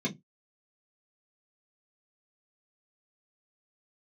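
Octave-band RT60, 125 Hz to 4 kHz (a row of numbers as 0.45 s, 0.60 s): 0.20 s, 0.25 s, 0.20 s, 0.15 s, 0.15 s, 0.10 s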